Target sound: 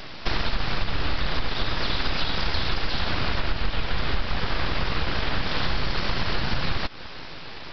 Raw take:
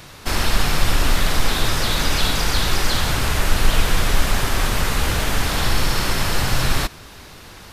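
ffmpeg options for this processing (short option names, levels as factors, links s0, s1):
-af "acompressor=threshold=0.0631:ratio=6,aresample=11025,aeval=exprs='abs(val(0))':c=same,aresample=44100,volume=1.78"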